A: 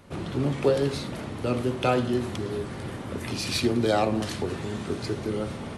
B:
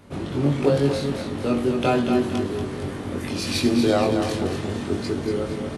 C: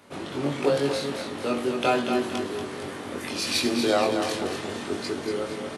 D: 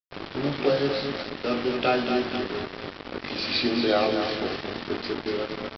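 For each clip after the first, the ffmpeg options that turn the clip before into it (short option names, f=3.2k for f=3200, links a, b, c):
-filter_complex "[0:a]equalizer=f=260:w=0.91:g=3.5,asplit=2[a][b];[b]adelay=21,volume=-3.5dB[c];[a][c]amix=inputs=2:normalize=0,asplit=2[d][e];[e]aecho=0:1:235|470|705|940|1175:0.447|0.197|0.0865|0.0381|0.0167[f];[d][f]amix=inputs=2:normalize=0"
-af "highpass=f=590:p=1,volume=1.5dB"
-af "bandreject=f=970:w=6,aresample=11025,acrusher=bits=4:mix=0:aa=0.5,aresample=44100"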